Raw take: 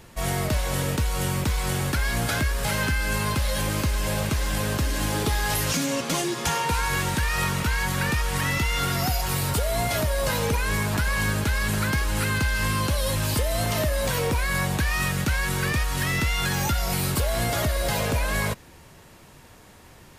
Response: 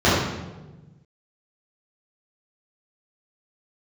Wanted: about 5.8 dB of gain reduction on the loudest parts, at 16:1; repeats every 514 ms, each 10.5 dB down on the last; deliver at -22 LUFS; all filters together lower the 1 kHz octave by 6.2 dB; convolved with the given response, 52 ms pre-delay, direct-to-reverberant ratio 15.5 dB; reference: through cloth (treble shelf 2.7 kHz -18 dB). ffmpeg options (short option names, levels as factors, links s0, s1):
-filter_complex "[0:a]equalizer=f=1000:t=o:g=-5,acompressor=threshold=0.0501:ratio=16,aecho=1:1:514|1028|1542:0.299|0.0896|0.0269,asplit=2[s0][s1];[1:a]atrim=start_sample=2205,adelay=52[s2];[s1][s2]afir=irnorm=-1:irlink=0,volume=0.0112[s3];[s0][s3]amix=inputs=2:normalize=0,highshelf=f=2700:g=-18,volume=2.99"